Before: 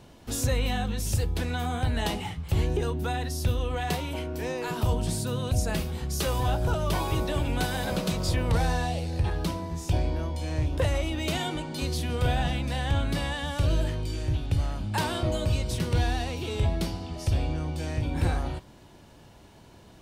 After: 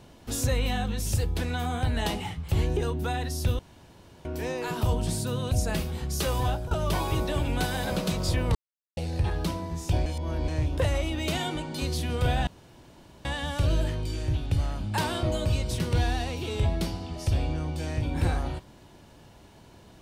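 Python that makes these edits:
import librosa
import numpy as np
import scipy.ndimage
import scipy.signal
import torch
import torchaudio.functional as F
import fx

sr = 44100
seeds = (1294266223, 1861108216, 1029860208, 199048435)

y = fx.edit(x, sr, fx.room_tone_fill(start_s=3.59, length_s=0.66),
    fx.fade_out_to(start_s=6.46, length_s=0.25, floor_db=-14.5),
    fx.silence(start_s=8.55, length_s=0.42),
    fx.reverse_span(start_s=10.06, length_s=0.42),
    fx.room_tone_fill(start_s=12.47, length_s=0.78), tone=tone)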